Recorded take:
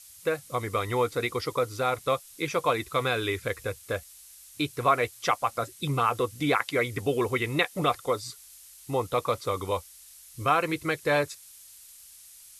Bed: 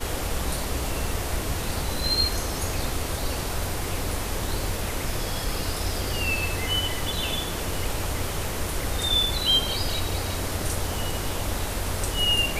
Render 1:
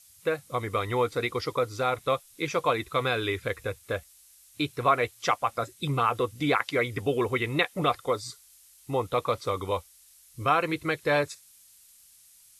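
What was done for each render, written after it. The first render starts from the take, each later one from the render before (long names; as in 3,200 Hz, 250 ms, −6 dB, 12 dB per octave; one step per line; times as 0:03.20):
noise reduction from a noise print 6 dB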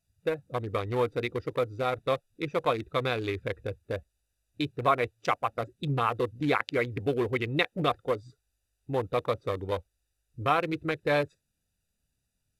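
adaptive Wiener filter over 41 samples
parametric band 1,200 Hz −2 dB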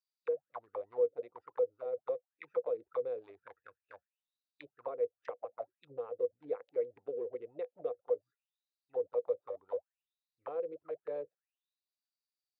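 envelope filter 490–4,500 Hz, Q 12, down, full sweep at −25 dBFS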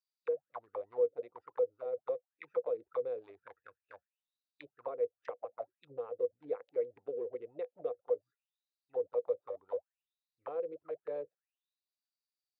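no processing that can be heard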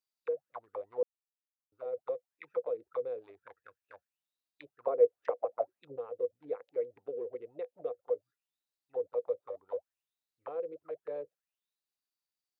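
0:01.03–0:01.72: silence
0:04.87–0:05.96: parametric band 510 Hz +9.5 dB 2.7 octaves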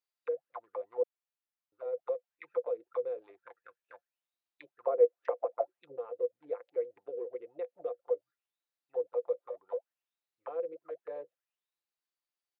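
bass and treble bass −12 dB, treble −8 dB
comb filter 5.8 ms, depth 39%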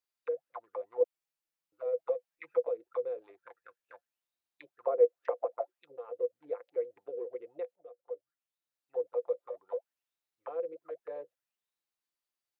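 0:01.00–0:02.69: comb filter 6.2 ms, depth 64%
0:05.59–0:06.08: low-shelf EQ 450 Hz −10 dB
0:07.76–0:09.01: fade in, from −19.5 dB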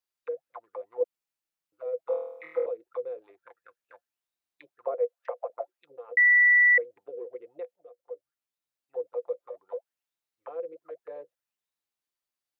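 0:02.06–0:02.66: flutter between parallel walls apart 4.3 metres, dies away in 0.78 s
0:04.94–0:05.50: Butterworth high-pass 500 Hz
0:06.17–0:06.78: beep over 1,960 Hz −15.5 dBFS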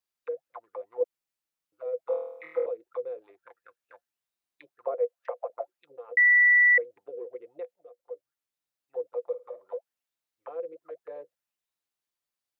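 0:09.23–0:09.75: flutter between parallel walls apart 9 metres, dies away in 0.24 s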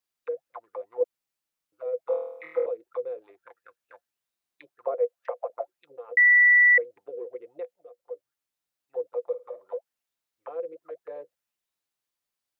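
level +2 dB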